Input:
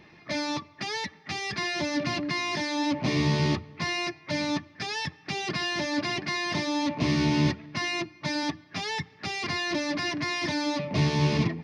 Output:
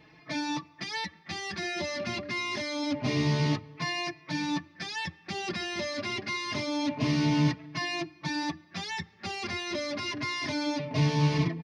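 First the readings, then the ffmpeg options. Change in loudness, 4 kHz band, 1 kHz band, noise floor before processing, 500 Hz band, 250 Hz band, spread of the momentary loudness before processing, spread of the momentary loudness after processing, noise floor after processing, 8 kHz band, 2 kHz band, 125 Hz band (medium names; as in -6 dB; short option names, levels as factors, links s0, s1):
-2.5 dB, -3.0 dB, -3.0 dB, -55 dBFS, -3.0 dB, -2.5 dB, 8 LU, 9 LU, -58 dBFS, -3.0 dB, -3.5 dB, -1.0 dB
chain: -filter_complex "[0:a]asplit=2[s0][s1];[s1]adelay=4.2,afreqshift=0.27[s2];[s0][s2]amix=inputs=2:normalize=1"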